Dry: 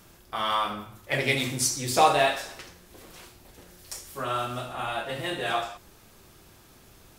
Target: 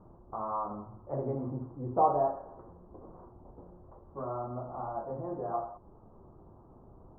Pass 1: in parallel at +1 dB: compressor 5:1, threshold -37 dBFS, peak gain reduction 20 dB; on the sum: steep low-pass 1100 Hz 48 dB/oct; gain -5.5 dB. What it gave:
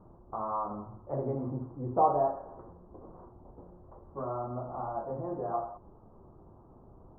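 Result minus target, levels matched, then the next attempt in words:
compressor: peak gain reduction -5 dB
in parallel at +1 dB: compressor 5:1, threshold -43.5 dBFS, peak gain reduction 25.5 dB; on the sum: steep low-pass 1100 Hz 48 dB/oct; gain -5.5 dB

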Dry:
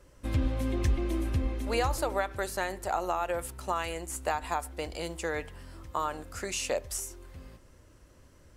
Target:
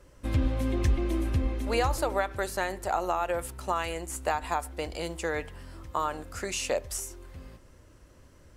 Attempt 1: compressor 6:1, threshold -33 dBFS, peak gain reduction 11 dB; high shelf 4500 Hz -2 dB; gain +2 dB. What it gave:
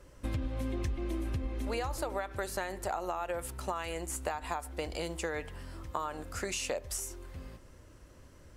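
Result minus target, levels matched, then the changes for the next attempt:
compressor: peak gain reduction +11 dB
remove: compressor 6:1, threshold -33 dBFS, peak gain reduction 11 dB

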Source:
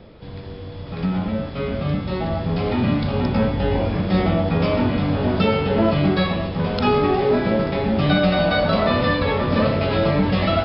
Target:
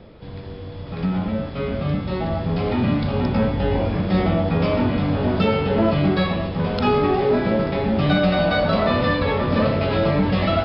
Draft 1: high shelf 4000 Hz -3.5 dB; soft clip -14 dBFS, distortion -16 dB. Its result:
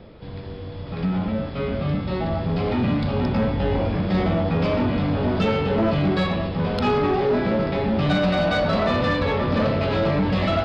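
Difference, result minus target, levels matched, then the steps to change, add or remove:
soft clip: distortion +15 dB
change: soft clip -4.5 dBFS, distortion -31 dB

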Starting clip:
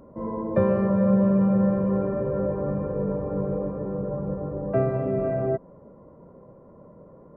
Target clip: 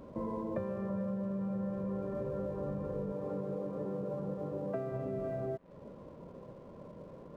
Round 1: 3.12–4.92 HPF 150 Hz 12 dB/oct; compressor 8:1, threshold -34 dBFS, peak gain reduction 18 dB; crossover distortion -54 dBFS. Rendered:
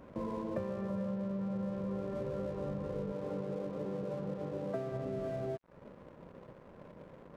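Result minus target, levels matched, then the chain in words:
crossover distortion: distortion +11 dB
3.12–4.92 HPF 150 Hz 12 dB/oct; compressor 8:1, threshold -34 dBFS, peak gain reduction 18 dB; crossover distortion -65.5 dBFS

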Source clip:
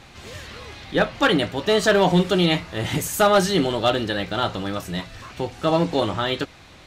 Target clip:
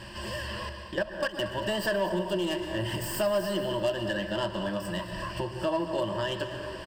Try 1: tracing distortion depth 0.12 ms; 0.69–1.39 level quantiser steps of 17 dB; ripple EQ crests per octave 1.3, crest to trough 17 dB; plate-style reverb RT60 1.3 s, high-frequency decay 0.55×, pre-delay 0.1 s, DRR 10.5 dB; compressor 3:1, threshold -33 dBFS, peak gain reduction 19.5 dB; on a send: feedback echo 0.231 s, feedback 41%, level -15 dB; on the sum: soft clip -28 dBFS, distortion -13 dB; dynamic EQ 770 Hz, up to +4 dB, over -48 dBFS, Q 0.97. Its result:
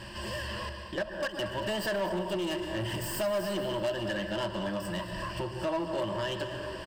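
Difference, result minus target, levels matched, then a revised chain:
soft clip: distortion +12 dB
tracing distortion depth 0.12 ms; 0.69–1.39 level quantiser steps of 17 dB; ripple EQ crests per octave 1.3, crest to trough 17 dB; plate-style reverb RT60 1.3 s, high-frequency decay 0.55×, pre-delay 0.1 s, DRR 10.5 dB; compressor 3:1, threshold -33 dBFS, peak gain reduction 19.5 dB; on a send: feedback echo 0.231 s, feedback 41%, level -15 dB; on the sum: soft clip -19 dBFS, distortion -25 dB; dynamic EQ 770 Hz, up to +4 dB, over -48 dBFS, Q 0.97

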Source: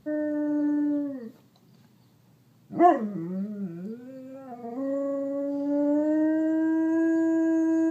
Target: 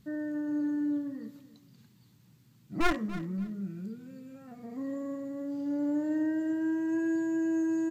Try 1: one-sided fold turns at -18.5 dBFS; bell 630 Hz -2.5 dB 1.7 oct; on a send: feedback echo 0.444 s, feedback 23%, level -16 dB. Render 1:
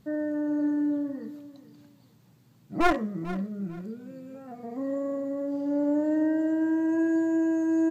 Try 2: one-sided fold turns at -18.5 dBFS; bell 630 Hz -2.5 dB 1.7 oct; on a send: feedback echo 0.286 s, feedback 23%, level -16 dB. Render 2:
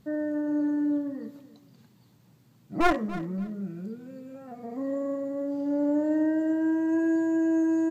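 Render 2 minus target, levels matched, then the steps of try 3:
500 Hz band +2.5 dB
one-sided fold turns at -18.5 dBFS; bell 630 Hz -13 dB 1.7 oct; on a send: feedback echo 0.286 s, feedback 23%, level -16 dB

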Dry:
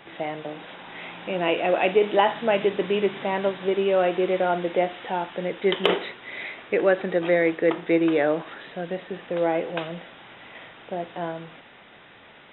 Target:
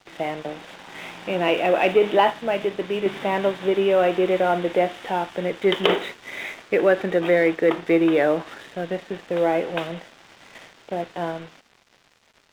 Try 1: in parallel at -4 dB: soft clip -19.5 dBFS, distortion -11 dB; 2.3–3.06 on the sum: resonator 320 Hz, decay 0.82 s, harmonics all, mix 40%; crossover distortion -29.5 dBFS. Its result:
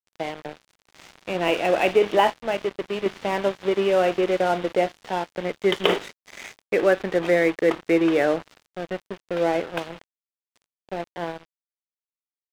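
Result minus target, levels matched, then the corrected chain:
crossover distortion: distortion +10 dB
in parallel at -4 dB: soft clip -19.5 dBFS, distortion -11 dB; 2.3–3.06 on the sum: resonator 320 Hz, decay 0.82 s, harmonics all, mix 40%; crossover distortion -41.5 dBFS

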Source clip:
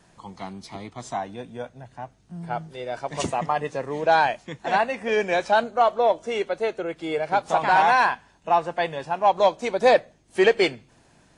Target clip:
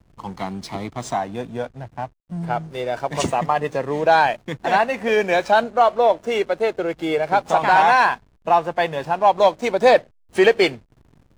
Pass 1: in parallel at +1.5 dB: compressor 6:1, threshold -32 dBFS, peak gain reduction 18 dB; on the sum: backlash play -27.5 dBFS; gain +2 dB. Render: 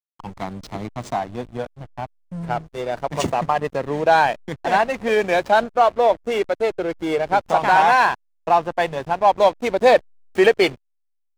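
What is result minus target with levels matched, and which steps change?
backlash: distortion +10 dB
change: backlash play -38.5 dBFS

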